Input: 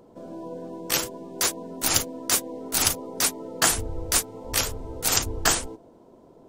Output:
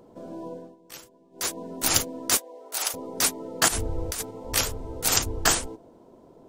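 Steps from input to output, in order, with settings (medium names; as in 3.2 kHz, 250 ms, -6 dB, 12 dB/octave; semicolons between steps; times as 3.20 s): 0.48–1.59 s: dip -19 dB, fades 0.28 s; 2.37–2.94 s: ladder high-pass 420 Hz, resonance 25%; 3.68–4.31 s: compressor with a negative ratio -28 dBFS, ratio -1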